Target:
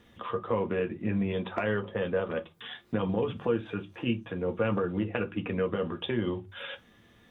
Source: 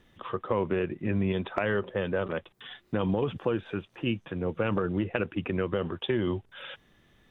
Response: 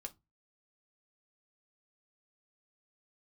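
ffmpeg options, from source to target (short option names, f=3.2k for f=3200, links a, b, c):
-filter_complex "[0:a]highpass=45,asplit=2[a][b];[b]acompressor=threshold=-40dB:ratio=6,volume=1.5dB[c];[a][c]amix=inputs=2:normalize=0[d];[1:a]atrim=start_sample=2205[e];[d][e]afir=irnorm=-1:irlink=0,volume=1dB"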